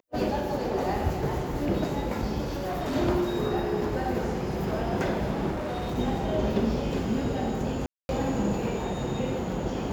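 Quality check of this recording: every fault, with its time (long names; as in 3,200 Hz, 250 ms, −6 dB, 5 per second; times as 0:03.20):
0:02.44–0:02.96: clipping −27 dBFS
0:05.51–0:05.99: clipping −28 dBFS
0:07.86–0:08.09: drop-out 231 ms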